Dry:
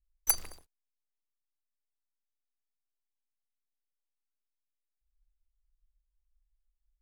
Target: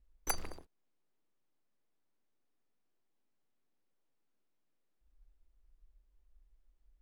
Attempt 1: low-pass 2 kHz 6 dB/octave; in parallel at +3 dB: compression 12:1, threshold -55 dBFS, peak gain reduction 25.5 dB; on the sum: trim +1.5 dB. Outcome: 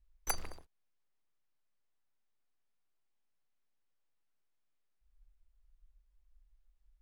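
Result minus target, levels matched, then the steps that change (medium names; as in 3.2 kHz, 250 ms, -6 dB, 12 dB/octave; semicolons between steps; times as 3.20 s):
250 Hz band -4.0 dB
add after compression: peaking EQ 290 Hz +14.5 dB 2.6 oct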